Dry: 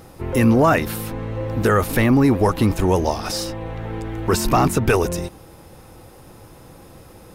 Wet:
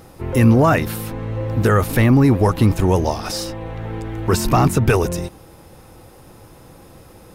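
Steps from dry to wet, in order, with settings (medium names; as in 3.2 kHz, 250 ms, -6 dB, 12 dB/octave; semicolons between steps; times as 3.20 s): dynamic bell 120 Hz, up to +6 dB, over -31 dBFS, Q 1.3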